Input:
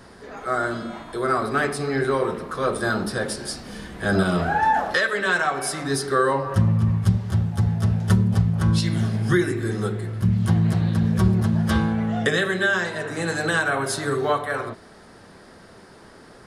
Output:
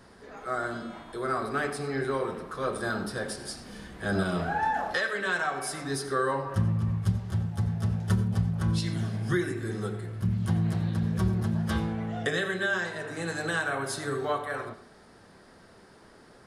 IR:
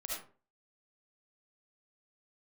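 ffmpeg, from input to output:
-filter_complex "[0:a]asplit=2[a][b];[1:a]atrim=start_sample=2205,asetrate=52920,aresample=44100,adelay=30[c];[b][c]afir=irnorm=-1:irlink=0,volume=-10.5dB[d];[a][d]amix=inputs=2:normalize=0,volume=-7.5dB"

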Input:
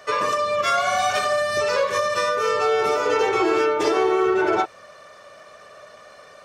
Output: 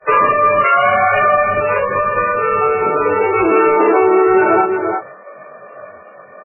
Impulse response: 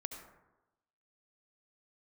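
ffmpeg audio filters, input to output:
-filter_complex "[0:a]adynamicsmooth=sensitivity=2.5:basefreq=1.9k,asoftclip=type=tanh:threshold=-10.5dB,asplit=2[a][b];[b]adelay=21,volume=-7dB[c];[a][c]amix=inputs=2:normalize=0,asettb=1/sr,asplit=3[d][e][f];[d]atrim=end=1.484[g];[e]atrim=start=1.48:end=3.52,asetpts=PTS-STARTPTS,afade=t=in:d=0.004:c=qsin,afade=t=out:st=2.036:d=0.004:c=qsin,acrossover=split=210[h][i];[i]acompressor=threshold=-34dB:ratio=1.5[j];[h][j]amix=inputs=2:normalize=0[k];[f]atrim=start=3.516[l];[g][k]acrossfade=d=0.004:c1=hsin:c2=qsin[m];[m][l]acrossfade=d=0.004:c1=qsin:c2=hsin,asplit=2[n][o];[o]adelay=344,volume=-10dB,highshelf=f=4k:g=-7.74[p];[n][p]amix=inputs=2:normalize=0,agate=range=-33dB:threshold=-42dB:ratio=3:detection=peak,alimiter=level_in=15dB:limit=-1dB:release=50:level=0:latency=1,volume=-3dB" -ar 11025 -c:a libmp3lame -b:a 8k

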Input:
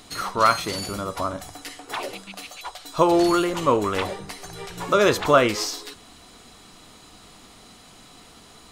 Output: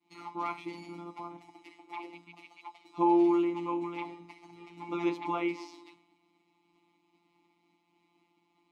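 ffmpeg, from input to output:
-filter_complex "[0:a]afftfilt=real='hypot(re,im)*cos(PI*b)':imag='0':win_size=1024:overlap=0.75,agate=range=-33dB:threshold=-44dB:ratio=3:detection=peak,asplit=3[a][b][c];[a]bandpass=f=300:t=q:w=8,volume=0dB[d];[b]bandpass=f=870:t=q:w=8,volume=-6dB[e];[c]bandpass=f=2.24k:t=q:w=8,volume=-9dB[f];[d][e][f]amix=inputs=3:normalize=0,volume=4.5dB"

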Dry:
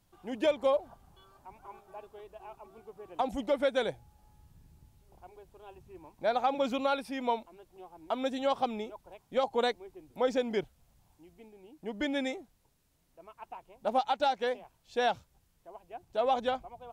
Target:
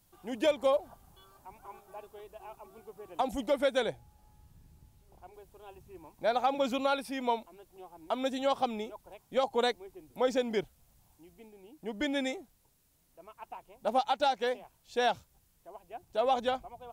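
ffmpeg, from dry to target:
-af "asetnsamples=n=441:p=0,asendcmd='3.8 highshelf g 2.5;5.34 highshelf g 8.5',highshelf=f=7k:g=11"

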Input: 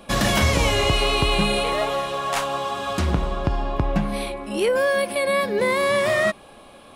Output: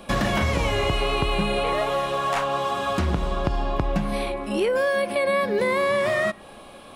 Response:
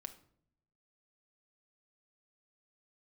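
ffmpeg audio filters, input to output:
-filter_complex "[0:a]acrossover=split=2800|7700[a][b][c];[a]acompressor=threshold=-22dB:ratio=4[d];[b]acompressor=threshold=-44dB:ratio=4[e];[c]acompressor=threshold=-53dB:ratio=4[f];[d][e][f]amix=inputs=3:normalize=0,asplit=2[g][h];[1:a]atrim=start_sample=2205[i];[h][i]afir=irnorm=-1:irlink=0,volume=-6.5dB[j];[g][j]amix=inputs=2:normalize=0"

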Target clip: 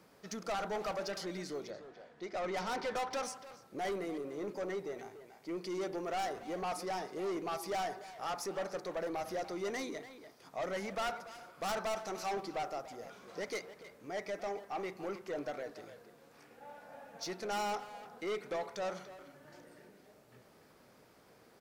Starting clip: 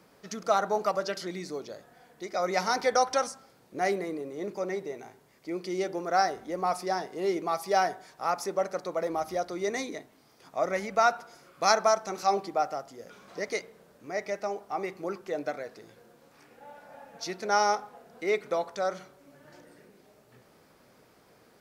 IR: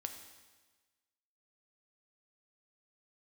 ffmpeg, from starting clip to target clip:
-filter_complex "[0:a]asettb=1/sr,asplit=3[a][b][c];[a]atrim=end=1.704[d];[b]atrim=start=1.7:end=3.23,asetpts=PTS-STARTPTS,afade=t=in:d=0.004:c=qsin,afade=t=out:st=1.526:d=0.004:c=qsin,lowpass=4.6k[e];[c]atrim=start=3.226[f];[d][e]acrossfade=d=0.004:c1=hsin:c2=qsin[g];[g][f]acrossfade=d=0.004:c1=qsin:c2=hsin,aeval=exprs='(tanh(31.6*val(0)+0.05)-tanh(0.05))/31.6':c=same,asplit=2[h][i];[i]adelay=290,highpass=300,lowpass=3.4k,asoftclip=type=hard:threshold=-38.5dB,volume=-8dB[j];[h][j]amix=inputs=2:normalize=0,volume=-3dB"

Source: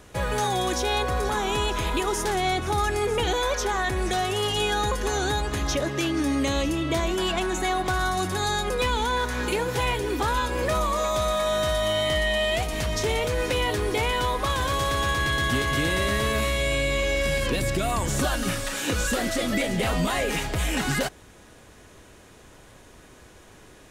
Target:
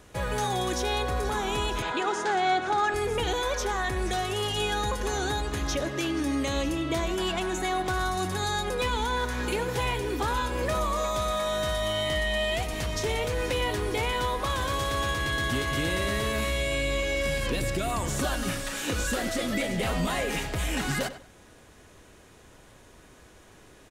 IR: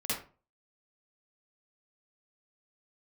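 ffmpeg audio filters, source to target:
-filter_complex "[0:a]asettb=1/sr,asplit=3[a][b][c];[a]atrim=end=1.824[d];[b]atrim=start=1.82:end=2.94,asetpts=PTS-STARTPTS,afade=t=in:d=0.004:c=qsin,afade=t=out:st=1.116:d=0.004:c=qsin,highpass=230,equalizer=f=780:t=q:w=4:g=6,equalizer=f=1.5k:t=q:w=4:g=9,equalizer=f=5.6k:t=q:w=4:g=-5,lowpass=f=7.2k:w=0.5412,lowpass=f=7.2k:w=1.3066[e];[c]atrim=start=2.936[f];[d][e]acrossfade=d=0.004:c1=hsin:c2=qsin[g];[g][f]acrossfade=d=0.004:c1=qsin:c2=hsin,asplit=2[h][i];[i]adelay=97,lowpass=f=3.7k:p=1,volume=-12.5dB,asplit=2[j][k];[k]adelay=97,lowpass=f=3.7k:p=1,volume=0.26,asplit=2[l][m];[m]adelay=97,lowpass=f=3.7k:p=1,volume=0.26[n];[h][j][l][n]amix=inputs=4:normalize=0,volume=-3.5dB"

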